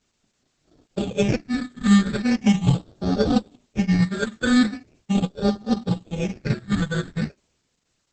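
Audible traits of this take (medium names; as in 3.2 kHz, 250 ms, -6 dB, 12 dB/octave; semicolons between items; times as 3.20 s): aliases and images of a low sample rate 1 kHz, jitter 0%; phasing stages 8, 0.4 Hz, lowest notch 760–2300 Hz; a quantiser's noise floor 12-bit, dither triangular; Opus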